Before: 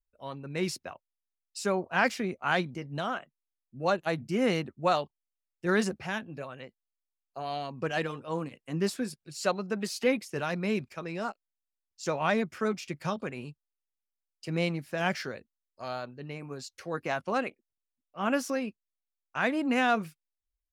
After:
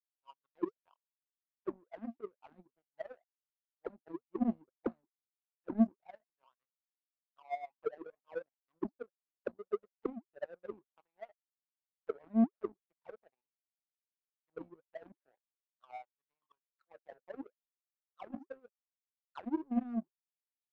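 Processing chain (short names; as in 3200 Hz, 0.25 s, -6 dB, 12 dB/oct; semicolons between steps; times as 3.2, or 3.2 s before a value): auto-wah 230–1600 Hz, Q 18, down, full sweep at -23 dBFS; power-law curve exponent 2; gain +10.5 dB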